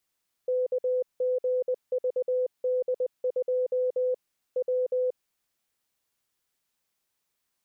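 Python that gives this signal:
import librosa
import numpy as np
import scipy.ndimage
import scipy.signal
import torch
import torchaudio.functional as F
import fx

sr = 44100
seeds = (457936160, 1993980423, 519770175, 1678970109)

y = fx.morse(sr, text='KGVD2 W', wpm=20, hz=505.0, level_db=-23.0)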